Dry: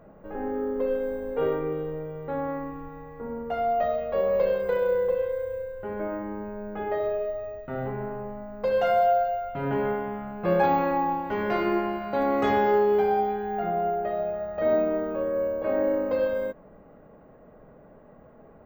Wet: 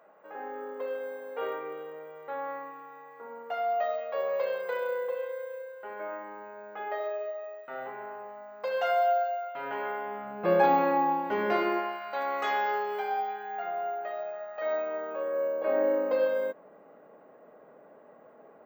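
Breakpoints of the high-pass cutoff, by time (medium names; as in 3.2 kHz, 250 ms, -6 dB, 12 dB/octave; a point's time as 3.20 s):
9.93 s 750 Hz
10.42 s 250 Hz
11.51 s 250 Hz
11.99 s 910 Hz
14.83 s 910 Hz
15.79 s 370 Hz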